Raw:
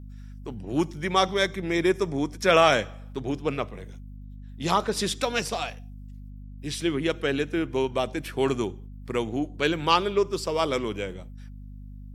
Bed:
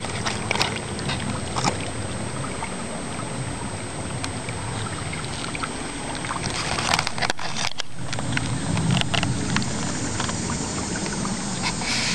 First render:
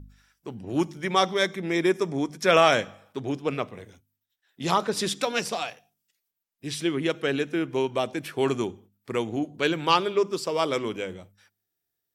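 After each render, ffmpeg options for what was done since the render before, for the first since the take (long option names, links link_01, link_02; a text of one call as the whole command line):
ffmpeg -i in.wav -af "bandreject=frequency=50:width_type=h:width=4,bandreject=frequency=100:width_type=h:width=4,bandreject=frequency=150:width_type=h:width=4,bandreject=frequency=200:width_type=h:width=4,bandreject=frequency=250:width_type=h:width=4" out.wav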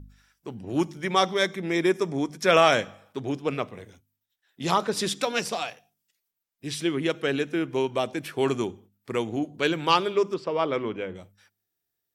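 ffmpeg -i in.wav -filter_complex "[0:a]asplit=3[link_01][link_02][link_03];[link_01]afade=type=out:start_time=10.33:duration=0.02[link_04];[link_02]lowpass=2500,afade=type=in:start_time=10.33:duration=0.02,afade=type=out:start_time=11.14:duration=0.02[link_05];[link_03]afade=type=in:start_time=11.14:duration=0.02[link_06];[link_04][link_05][link_06]amix=inputs=3:normalize=0" out.wav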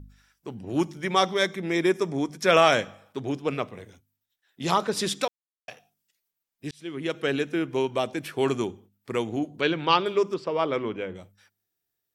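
ffmpeg -i in.wav -filter_complex "[0:a]asettb=1/sr,asplit=3[link_01][link_02][link_03];[link_01]atrim=end=9.614[link_04];[link_02]atrim=start=9.61:end=10.06,asetpts=PTS-STARTPTS,afade=type=in:duration=0.004:curve=qsin,afade=type=out:start_time=0.446:duration=0.004:curve=qsin,lowpass=frequency=4800:width=0.5412,lowpass=frequency=4800:width=1.3066[link_05];[link_03]atrim=start=10.056[link_06];[link_04][link_05]acrossfade=duration=0.004:curve1=hsin:curve2=qsin[link_07];[link_07][link_06]acrossfade=duration=0.004:curve1=qsin:curve2=hsin,asplit=4[link_08][link_09][link_10][link_11];[link_08]atrim=end=5.28,asetpts=PTS-STARTPTS,afade=type=out:start_time=5.276:duration=0.004:curve=hsin[link_12];[link_09]atrim=start=5.28:end=5.68,asetpts=PTS-STARTPTS,volume=0[link_13];[link_10]atrim=start=5.68:end=6.71,asetpts=PTS-STARTPTS,afade=type=in:duration=0.004:curve=hsin,afade=type=out:start_time=1.026:duration=0.004:curve=hsin[link_14];[link_11]atrim=start=6.71,asetpts=PTS-STARTPTS,afade=type=in:duration=0.54[link_15];[link_12][link_13][link_14][link_15]concat=n=4:v=0:a=1" out.wav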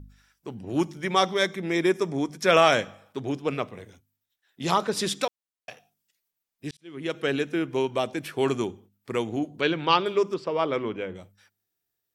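ffmpeg -i in.wav -filter_complex "[0:a]asplit=2[link_01][link_02];[link_01]atrim=end=6.77,asetpts=PTS-STARTPTS,afade=type=out:start_time=6.766:duration=0.004:curve=hsin[link_03];[link_02]atrim=start=6.77,asetpts=PTS-STARTPTS,afade=type=in:duration=0.44:curve=qsin[link_04];[link_03][link_04]concat=n=2:v=0:a=1" out.wav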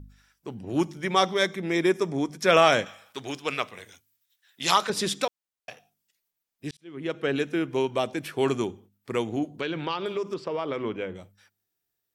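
ffmpeg -i in.wav -filter_complex "[0:a]asettb=1/sr,asplit=3[link_01][link_02][link_03];[link_01]atrim=end=2.864[link_04];[link_02]atrim=start=2.86:end=4.9,asetpts=PTS-STARTPTS,afade=type=in:duration=0.004:curve=qsin,afade=type=out:start_time=2.036:duration=0.004:curve=qsin,tiltshelf=frequency=830:gain=-9[link_05];[link_03]atrim=start=4.896[link_06];[link_04][link_05]acrossfade=duration=0.004:curve1=hsin:curve2=qsin[link_07];[link_07][link_06]acrossfade=duration=0.004:curve1=qsin:curve2=hsin,asettb=1/sr,asplit=3[link_08][link_09][link_10];[link_08]atrim=end=6.844[link_11];[link_09]atrim=start=6.84:end=7.36,asetpts=PTS-STARTPTS,afade=type=in:duration=0.004:curve=qsin,afade=type=out:start_time=0.516:duration=0.004:curve=qsin,highshelf=frequency=3800:gain=-9.5[link_12];[link_10]atrim=start=7.356[link_13];[link_11][link_12]acrossfade=duration=0.004:curve1=hsin:curve2=qsin[link_14];[link_14][link_13]acrossfade=duration=0.004:curve1=qsin:curve2=hsin,asettb=1/sr,asplit=3[link_15][link_16][link_17];[link_15]atrim=end=9.564[link_18];[link_16]atrim=start=9.56:end=10.82,asetpts=PTS-STARTPTS,afade=type=in:duration=0.004:curve=qsin,afade=type=out:start_time=1.256:duration=0.004:curve=qsin,acompressor=threshold=-25dB:ratio=6:attack=3.2:release=140:knee=1:detection=peak[link_19];[link_17]atrim=start=10.816[link_20];[link_18][link_19]acrossfade=duration=0.004:curve1=hsin:curve2=qsin[link_21];[link_21][link_20]acrossfade=duration=0.004:curve1=qsin:curve2=hsin" out.wav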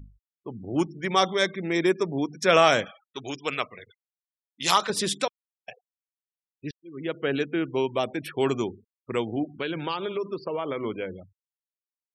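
ffmpeg -i in.wav -af "afftfilt=real='re*gte(hypot(re,im),0.01)':imag='im*gte(hypot(re,im),0.01)':win_size=1024:overlap=0.75,highshelf=frequency=11000:gain=8.5" out.wav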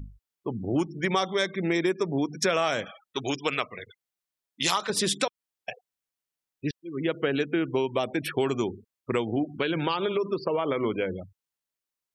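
ffmpeg -i in.wav -filter_complex "[0:a]asplit=2[link_01][link_02];[link_02]alimiter=limit=-14.5dB:level=0:latency=1:release=427,volume=0dB[link_03];[link_01][link_03]amix=inputs=2:normalize=0,acompressor=threshold=-23dB:ratio=4" out.wav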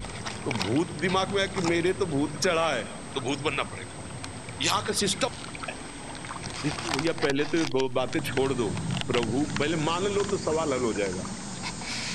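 ffmpeg -i in.wav -i bed.wav -filter_complex "[1:a]volume=-9dB[link_01];[0:a][link_01]amix=inputs=2:normalize=0" out.wav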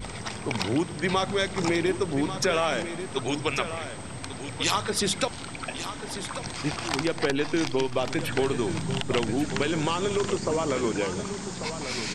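ffmpeg -i in.wav -af "aecho=1:1:1140:0.299" out.wav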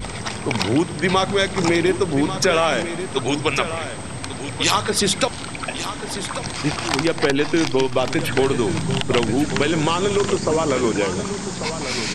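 ffmpeg -i in.wav -af "volume=7dB" out.wav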